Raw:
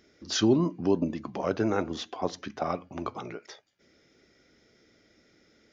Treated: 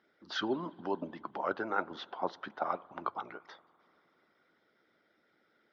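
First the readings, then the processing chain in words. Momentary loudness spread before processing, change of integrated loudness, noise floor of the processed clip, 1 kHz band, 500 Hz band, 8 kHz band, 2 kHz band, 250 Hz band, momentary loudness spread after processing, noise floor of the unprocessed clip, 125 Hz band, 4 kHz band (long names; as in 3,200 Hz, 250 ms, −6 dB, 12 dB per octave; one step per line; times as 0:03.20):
13 LU, −8.0 dB, −73 dBFS, −0.5 dB, −8.5 dB, can't be measured, +0.5 dB, −13.0 dB, 9 LU, −65 dBFS, −18.0 dB, −7.5 dB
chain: loudspeaker in its box 220–3,800 Hz, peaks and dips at 260 Hz −5 dB, 440 Hz −5 dB, 900 Hz +7 dB, 1,400 Hz +8 dB, 2,500 Hz −7 dB
spring reverb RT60 2.9 s, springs 47 ms, chirp 45 ms, DRR 18 dB
harmonic and percussive parts rebalanced harmonic −11 dB
level −3 dB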